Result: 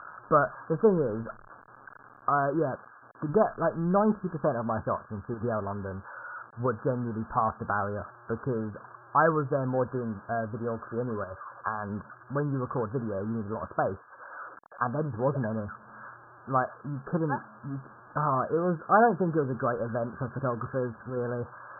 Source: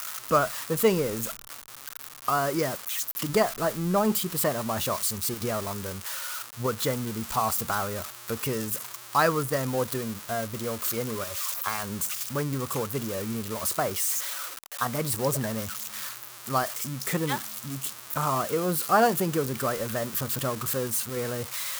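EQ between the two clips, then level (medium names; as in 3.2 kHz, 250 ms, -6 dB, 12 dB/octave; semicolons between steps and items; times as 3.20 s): brick-wall FIR low-pass 1.7 kHz; 0.0 dB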